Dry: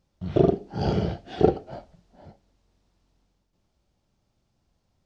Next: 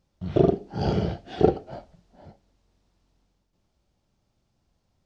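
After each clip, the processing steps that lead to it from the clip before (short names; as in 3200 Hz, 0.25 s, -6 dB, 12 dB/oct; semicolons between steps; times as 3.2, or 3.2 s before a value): nothing audible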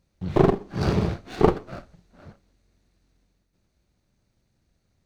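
minimum comb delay 0.47 ms; gain +2.5 dB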